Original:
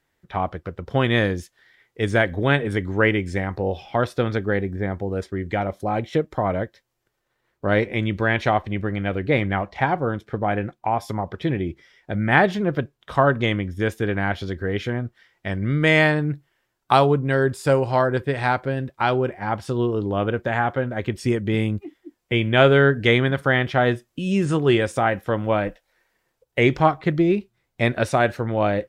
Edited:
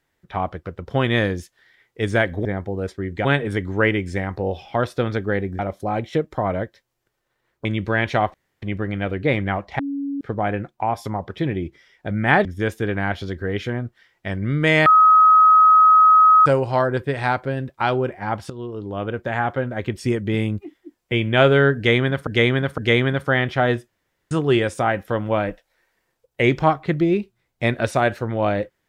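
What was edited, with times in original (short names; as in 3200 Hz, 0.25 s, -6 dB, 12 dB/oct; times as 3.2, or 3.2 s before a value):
4.79–5.59 move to 2.45
7.65–7.97 cut
8.66 insert room tone 0.28 s
9.83–10.25 bleep 280 Hz -23 dBFS
12.49–13.65 cut
16.06–17.66 bleep 1270 Hz -8.5 dBFS
19.7–20.7 fade in, from -13 dB
22.96–23.47 loop, 3 plays
24.06–24.49 room tone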